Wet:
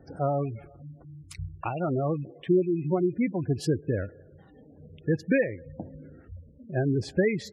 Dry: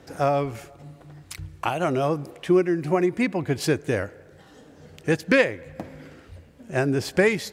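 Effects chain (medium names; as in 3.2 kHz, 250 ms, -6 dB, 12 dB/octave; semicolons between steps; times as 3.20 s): rattle on loud lows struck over -33 dBFS, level -27 dBFS; spectral gate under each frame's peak -15 dB strong; bass shelf 270 Hz +9 dB; trim -7 dB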